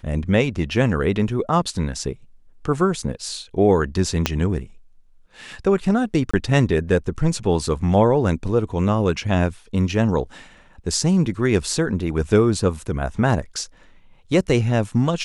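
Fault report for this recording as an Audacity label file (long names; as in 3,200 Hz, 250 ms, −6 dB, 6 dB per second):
4.260000	4.260000	click −3 dBFS
6.310000	6.330000	drop-out 25 ms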